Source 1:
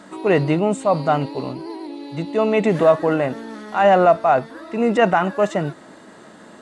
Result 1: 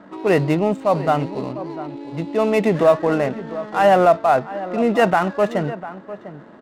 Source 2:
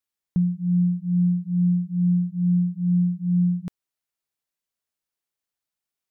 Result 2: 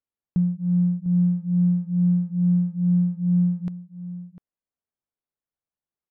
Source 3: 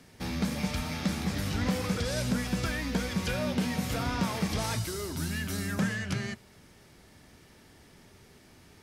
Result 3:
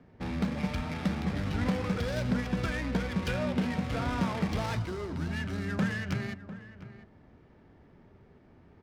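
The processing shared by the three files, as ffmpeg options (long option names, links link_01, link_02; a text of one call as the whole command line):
ffmpeg -i in.wav -filter_complex "[0:a]adynamicsmooth=sensitivity=7:basefreq=1300,asplit=2[link_01][link_02];[link_02]adelay=699.7,volume=-14dB,highshelf=frequency=4000:gain=-15.7[link_03];[link_01][link_03]amix=inputs=2:normalize=0" out.wav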